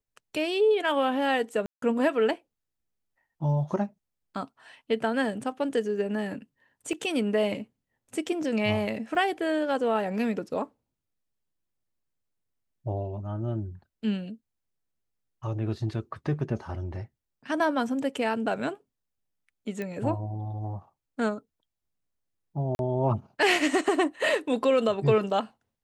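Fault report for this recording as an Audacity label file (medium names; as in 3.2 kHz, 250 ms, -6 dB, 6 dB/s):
1.660000	1.820000	dropout 163 ms
6.930000	6.930000	dropout 2.1 ms
9.150000	9.150000	dropout 2.1 ms
19.820000	19.820000	pop -21 dBFS
22.750000	22.790000	dropout 41 ms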